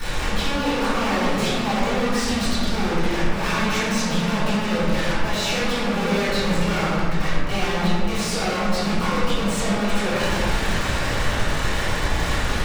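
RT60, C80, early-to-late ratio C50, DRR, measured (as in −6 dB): 2.0 s, −1.0 dB, −3.5 dB, −18.0 dB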